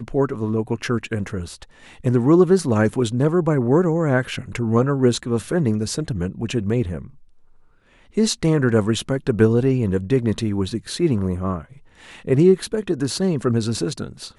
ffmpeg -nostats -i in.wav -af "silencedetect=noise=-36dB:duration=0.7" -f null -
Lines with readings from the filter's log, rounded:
silence_start: 7.10
silence_end: 8.16 | silence_duration: 1.06